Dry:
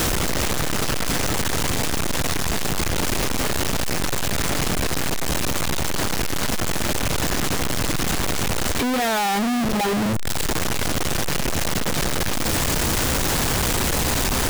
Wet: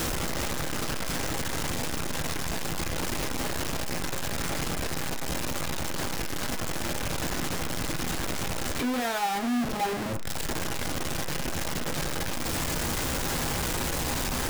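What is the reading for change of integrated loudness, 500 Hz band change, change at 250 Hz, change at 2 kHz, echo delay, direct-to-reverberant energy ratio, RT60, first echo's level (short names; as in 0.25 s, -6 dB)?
-8.0 dB, -7.5 dB, -7.5 dB, -7.5 dB, none, 5.5 dB, 0.50 s, none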